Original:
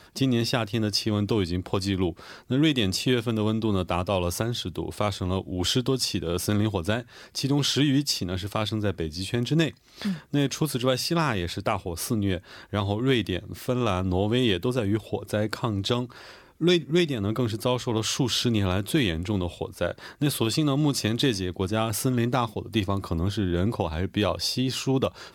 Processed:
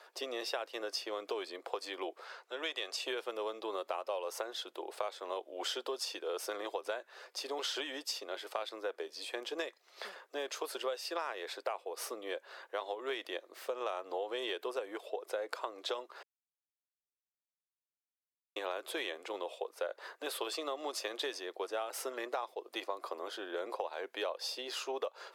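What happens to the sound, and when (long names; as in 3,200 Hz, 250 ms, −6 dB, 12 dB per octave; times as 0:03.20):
0:02.24–0:03.03: meter weighting curve A
0:16.23–0:18.56: silence
whole clip: Butterworth high-pass 450 Hz 36 dB per octave; high-shelf EQ 2,300 Hz −10 dB; downward compressor 6 to 1, threshold −32 dBFS; level −1.5 dB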